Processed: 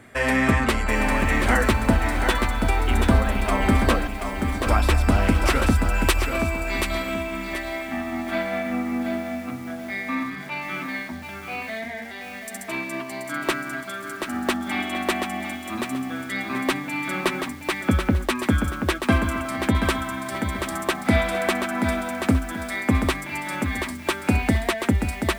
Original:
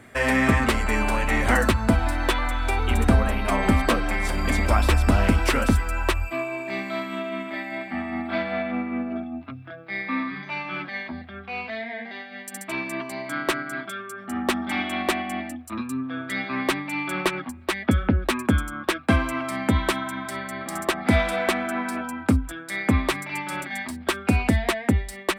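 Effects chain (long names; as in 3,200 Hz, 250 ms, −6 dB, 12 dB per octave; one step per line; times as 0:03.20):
0:04.07–0:04.67: stiff-string resonator 68 Hz, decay 0.78 s, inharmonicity 0.008
0:05.94–0:07.14: high-shelf EQ 3,700 Hz +11 dB
feedback echo at a low word length 731 ms, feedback 35%, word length 7 bits, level −6 dB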